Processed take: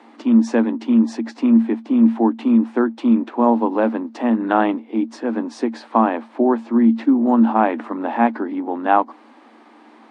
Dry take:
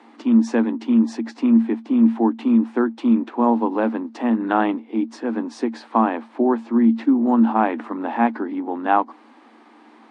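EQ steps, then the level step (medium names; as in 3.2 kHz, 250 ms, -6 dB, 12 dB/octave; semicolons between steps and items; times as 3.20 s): peaking EQ 590 Hz +4 dB 0.36 oct; +1.5 dB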